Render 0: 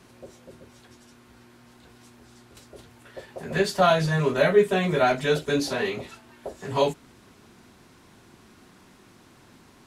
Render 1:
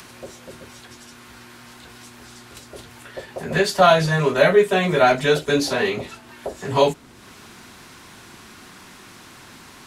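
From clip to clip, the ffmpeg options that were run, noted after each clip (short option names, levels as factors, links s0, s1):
-filter_complex "[0:a]acrossover=split=400|920[s0][s1][s2];[s0]alimiter=limit=0.0708:level=0:latency=1:release=419[s3];[s2]acompressor=mode=upward:threshold=0.00708:ratio=2.5[s4];[s3][s1][s4]amix=inputs=3:normalize=0,volume=2"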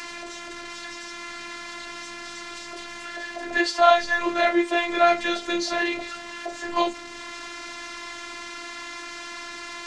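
-af "aeval=exprs='val(0)+0.5*0.0376*sgn(val(0))':c=same,highpass=100,equalizer=f=320:t=q:w=4:g=-7,equalizer=f=460:t=q:w=4:g=-4,equalizer=f=2000:t=q:w=4:g=6,lowpass=f=7000:w=0.5412,lowpass=f=7000:w=1.3066,afftfilt=real='hypot(re,im)*cos(PI*b)':imag='0':win_size=512:overlap=0.75,volume=0.891"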